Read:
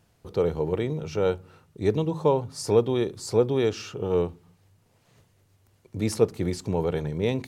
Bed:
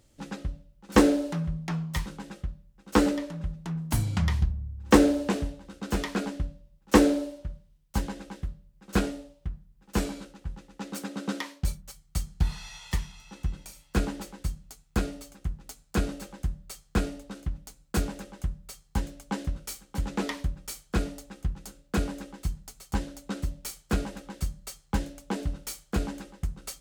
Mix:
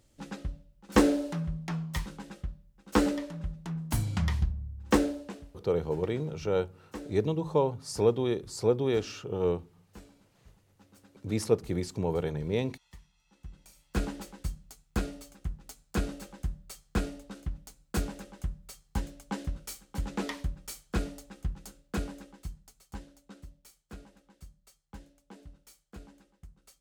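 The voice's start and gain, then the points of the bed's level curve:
5.30 s, -4.0 dB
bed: 4.82 s -3 dB
5.65 s -23 dB
13.12 s -23 dB
14.02 s -3.5 dB
21.69 s -3.5 dB
23.72 s -19.5 dB

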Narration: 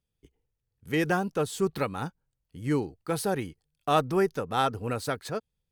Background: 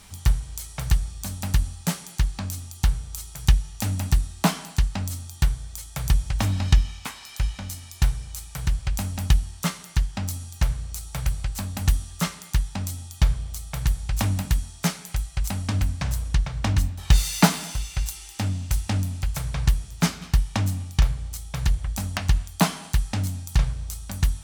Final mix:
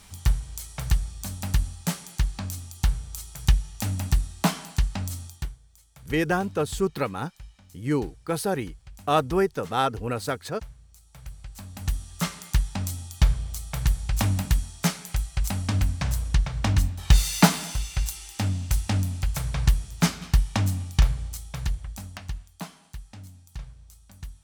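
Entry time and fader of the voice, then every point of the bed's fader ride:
5.20 s, +2.0 dB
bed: 5.26 s -2 dB
5.6 s -20 dB
10.99 s -20 dB
12.37 s 0 dB
21.22 s 0 dB
22.66 s -17.5 dB

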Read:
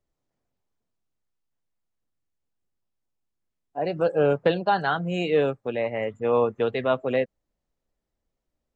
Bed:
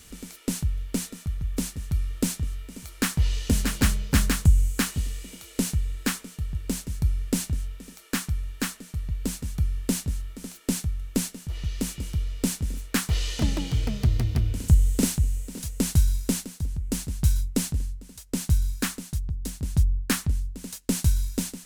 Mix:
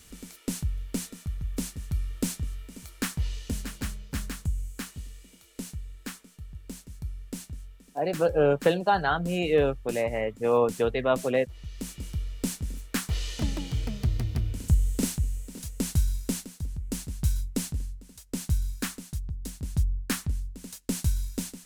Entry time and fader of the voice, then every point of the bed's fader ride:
4.20 s, -1.0 dB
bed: 2.84 s -3.5 dB
3.84 s -12 dB
11.56 s -12 dB
12.03 s -4.5 dB

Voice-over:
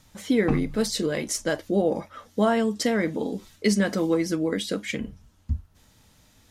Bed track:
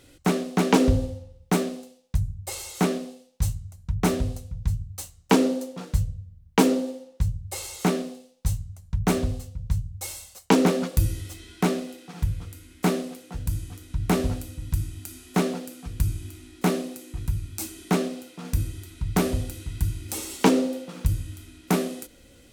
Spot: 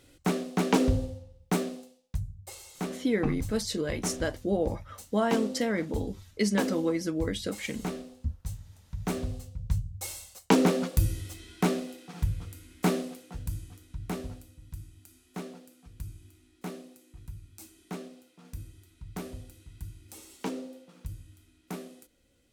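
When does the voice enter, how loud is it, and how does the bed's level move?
2.75 s, -5.0 dB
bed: 1.75 s -5 dB
2.59 s -11.5 dB
8.88 s -11.5 dB
9.63 s -3 dB
13.03 s -3 dB
14.56 s -16 dB

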